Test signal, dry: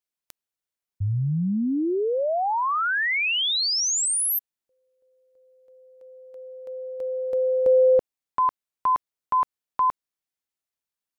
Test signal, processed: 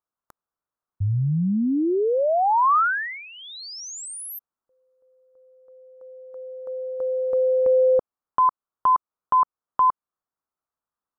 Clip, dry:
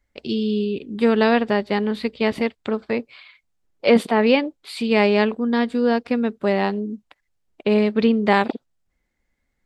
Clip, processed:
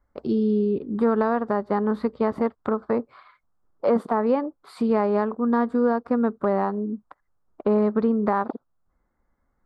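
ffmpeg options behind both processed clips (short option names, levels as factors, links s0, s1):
-af "highshelf=f=1800:t=q:w=3:g=-13.5,acompressor=threshold=0.141:ratio=6:attack=1.1:release=472:knee=6:detection=rms,volume=1.33"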